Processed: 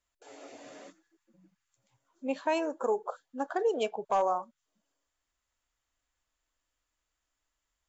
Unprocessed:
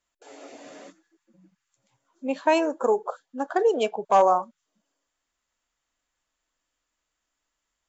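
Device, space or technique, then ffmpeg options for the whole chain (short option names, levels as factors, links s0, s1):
car stereo with a boomy subwoofer: -af "lowshelf=f=130:t=q:w=1.5:g=6,alimiter=limit=0.178:level=0:latency=1:release=415,volume=0.631"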